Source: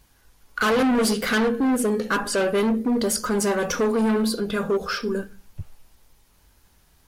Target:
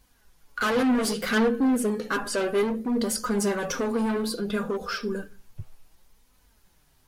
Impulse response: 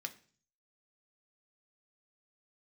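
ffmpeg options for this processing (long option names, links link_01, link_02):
-af "flanger=delay=3.9:depth=4.3:regen=42:speed=0.63:shape=sinusoidal"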